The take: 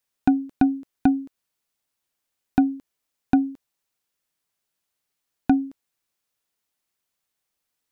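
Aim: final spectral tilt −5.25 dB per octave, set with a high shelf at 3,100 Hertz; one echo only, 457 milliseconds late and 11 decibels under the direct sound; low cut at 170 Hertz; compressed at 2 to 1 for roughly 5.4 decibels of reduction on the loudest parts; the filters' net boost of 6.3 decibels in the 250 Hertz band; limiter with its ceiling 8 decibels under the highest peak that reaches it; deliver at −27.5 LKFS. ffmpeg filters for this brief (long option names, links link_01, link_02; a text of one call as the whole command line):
ffmpeg -i in.wav -af "highpass=170,equalizer=frequency=250:width_type=o:gain=7.5,highshelf=frequency=3100:gain=-3.5,acompressor=threshold=-17dB:ratio=2,alimiter=limit=-13.5dB:level=0:latency=1,aecho=1:1:457:0.282,volume=-0.5dB" out.wav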